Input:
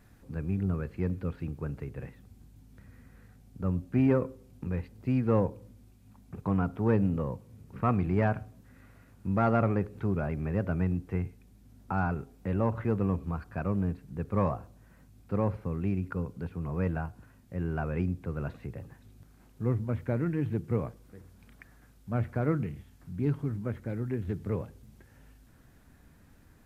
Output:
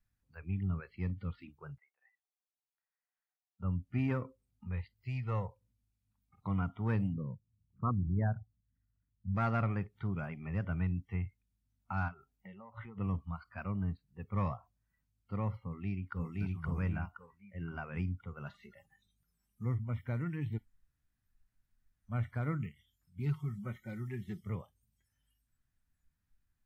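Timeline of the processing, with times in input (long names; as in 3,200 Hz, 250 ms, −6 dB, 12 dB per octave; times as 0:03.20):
0:01.78–0:03.60: four-pole ladder high-pass 610 Hz, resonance 50%
0:04.94–0:05.61: parametric band 250 Hz −12.5 dB 0.79 octaves
0:07.13–0:09.35: spectral envelope exaggerated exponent 2
0:12.08–0:12.98: downward compressor 16 to 1, threshold −33 dBFS
0:15.67–0:16.30: delay throw 520 ms, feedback 50%, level −0.5 dB
0:18.46–0:19.65: comb filter 5 ms, depth 40%
0:20.58–0:22.09: fill with room tone
0:23.20–0:24.42: comb filter 5.4 ms, depth 58%
whole clip: noise reduction from a noise print of the clip's start 22 dB; parametric band 420 Hz −14 dB 2.2 octaves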